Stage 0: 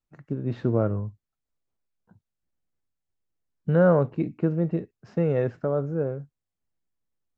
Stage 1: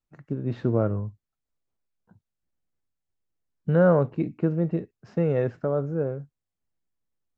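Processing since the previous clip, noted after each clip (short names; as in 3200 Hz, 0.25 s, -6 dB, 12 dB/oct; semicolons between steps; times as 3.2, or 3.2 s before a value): nothing audible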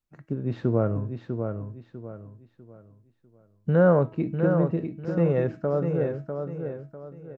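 de-hum 322 Hz, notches 30; on a send: feedback echo 0.648 s, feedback 33%, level -6.5 dB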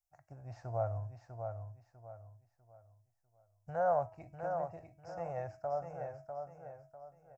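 EQ curve 100 Hz 0 dB, 200 Hz -25 dB, 430 Hz -20 dB, 710 Hz +12 dB, 1100 Hz -4 dB, 2400 Hz -6 dB, 3600 Hz -19 dB, 5200 Hz +8 dB; gain -8.5 dB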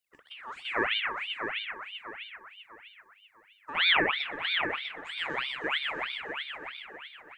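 split-band echo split 410 Hz, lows 0.259 s, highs 0.123 s, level -4 dB; ring modulator with a swept carrier 2000 Hz, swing 50%, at 3.1 Hz; gain +8 dB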